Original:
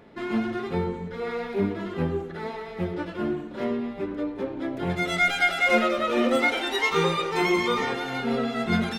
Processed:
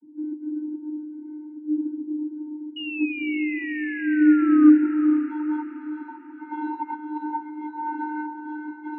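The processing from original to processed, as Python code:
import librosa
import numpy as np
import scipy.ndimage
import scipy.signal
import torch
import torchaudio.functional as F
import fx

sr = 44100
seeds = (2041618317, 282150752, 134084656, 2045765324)

p1 = fx.over_compress(x, sr, threshold_db=-28.0, ratio=-0.5)
p2 = fx.filter_sweep_lowpass(p1, sr, from_hz=240.0, to_hz=970.0, start_s=4.08, end_s=5.89, q=3.3)
p3 = fx.vocoder(p2, sr, bands=32, carrier='square', carrier_hz=303.0)
p4 = fx.spec_paint(p3, sr, seeds[0], shape='fall', start_s=2.76, length_s=1.94, low_hz=1200.0, high_hz=2900.0, level_db=-34.0)
y = p4 + fx.echo_diffused(p4, sr, ms=475, feedback_pct=49, wet_db=-8.5, dry=0)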